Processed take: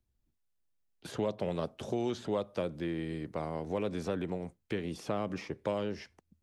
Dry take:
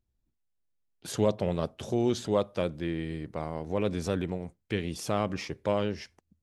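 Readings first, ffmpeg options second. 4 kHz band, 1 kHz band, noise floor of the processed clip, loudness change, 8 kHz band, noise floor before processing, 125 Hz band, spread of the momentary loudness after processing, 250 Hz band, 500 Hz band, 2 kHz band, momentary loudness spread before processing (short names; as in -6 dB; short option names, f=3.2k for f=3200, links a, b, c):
-6.5 dB, -4.5 dB, -79 dBFS, -5.0 dB, -10.5 dB, -79 dBFS, -6.5 dB, 5 LU, -4.5 dB, -5.0 dB, -4.5 dB, 8 LU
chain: -filter_complex "[0:a]acrossover=split=150|640|1600|3800[a][b][c][d][e];[a]acompressor=threshold=-49dB:ratio=4[f];[b]acompressor=threshold=-32dB:ratio=4[g];[c]acompressor=threshold=-39dB:ratio=4[h];[d]acompressor=threshold=-51dB:ratio=4[i];[e]acompressor=threshold=-56dB:ratio=4[j];[f][g][h][i][j]amix=inputs=5:normalize=0"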